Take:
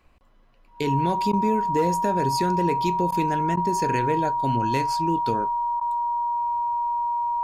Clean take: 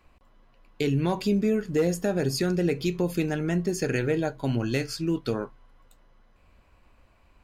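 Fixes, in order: band-stop 950 Hz, Q 30; interpolate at 1.32/3.11/3.56/5.80 s, 10 ms

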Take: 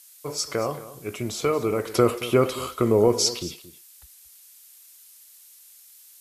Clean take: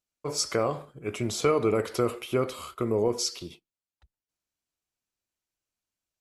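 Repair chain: noise print and reduce 30 dB; inverse comb 226 ms -16 dB; trim 0 dB, from 1.94 s -7 dB

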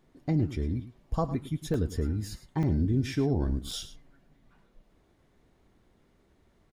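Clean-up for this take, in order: interpolate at 1.74/2.63/3.71 s, 3.5 ms; inverse comb 106 ms -14 dB

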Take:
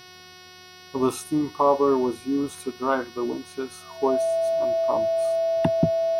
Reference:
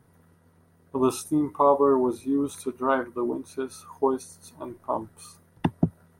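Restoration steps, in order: de-hum 365.5 Hz, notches 16; band-stop 660 Hz, Q 30; expander -39 dBFS, range -21 dB

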